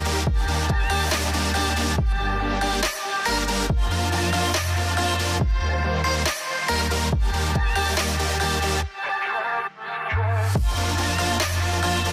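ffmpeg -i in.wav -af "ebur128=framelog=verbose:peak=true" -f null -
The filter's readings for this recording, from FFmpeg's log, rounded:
Integrated loudness:
  I:         -22.9 LUFS
  Threshold: -32.8 LUFS
Loudness range:
  LRA:         1.2 LU
  Threshold: -42.9 LUFS
  LRA low:   -23.7 LUFS
  LRA high:  -22.5 LUFS
True peak:
  Peak:      -11.7 dBFS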